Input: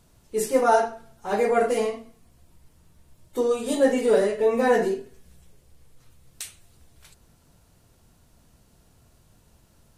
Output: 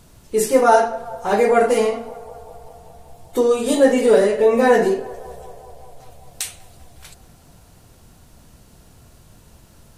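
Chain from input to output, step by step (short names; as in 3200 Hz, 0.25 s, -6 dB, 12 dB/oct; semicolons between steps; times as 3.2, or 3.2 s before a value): in parallel at -1 dB: compressor, threshold -31 dBFS, peak gain reduction 16.5 dB; on the sum: narrowing echo 0.195 s, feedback 80%, band-pass 770 Hz, level -18 dB; gain +4.5 dB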